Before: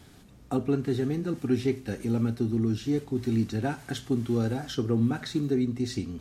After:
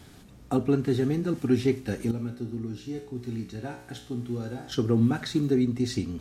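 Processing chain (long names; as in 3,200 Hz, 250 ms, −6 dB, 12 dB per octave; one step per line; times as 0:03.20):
0:02.11–0:04.72: tuned comb filter 61 Hz, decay 0.64 s, harmonics all, mix 80%
level +2.5 dB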